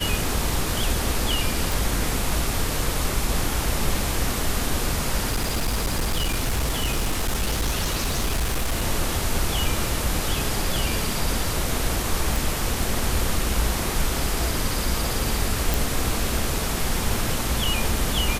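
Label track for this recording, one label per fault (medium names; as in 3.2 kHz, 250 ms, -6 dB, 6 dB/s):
1.720000	1.720000	pop
5.300000	8.840000	clipped -19 dBFS
12.360000	12.360000	pop
15.740000	15.740000	pop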